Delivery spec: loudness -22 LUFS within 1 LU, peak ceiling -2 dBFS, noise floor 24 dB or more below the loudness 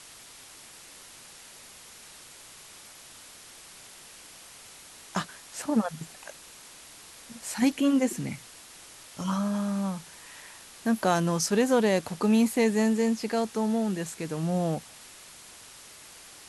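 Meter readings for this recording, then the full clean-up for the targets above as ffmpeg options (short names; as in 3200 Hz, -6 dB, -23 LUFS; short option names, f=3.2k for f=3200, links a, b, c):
noise floor -49 dBFS; noise floor target -52 dBFS; loudness -27.5 LUFS; peak -11.5 dBFS; loudness target -22.0 LUFS
-> -af "afftdn=nr=6:nf=-49"
-af "volume=5.5dB"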